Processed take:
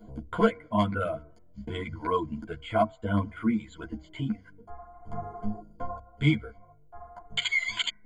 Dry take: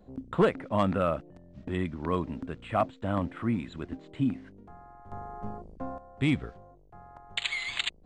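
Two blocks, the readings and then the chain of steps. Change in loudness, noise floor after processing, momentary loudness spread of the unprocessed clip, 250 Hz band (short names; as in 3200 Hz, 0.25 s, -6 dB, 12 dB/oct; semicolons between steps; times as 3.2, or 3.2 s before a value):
+1.0 dB, -55 dBFS, 17 LU, +0.5 dB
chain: de-hum 93.87 Hz, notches 24; reverb removal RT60 1.4 s; ripple EQ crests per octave 1.8, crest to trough 17 dB; in parallel at +1 dB: compressor, threshold -38 dBFS, peak gain reduction 23.5 dB; on the sum: ensemble effect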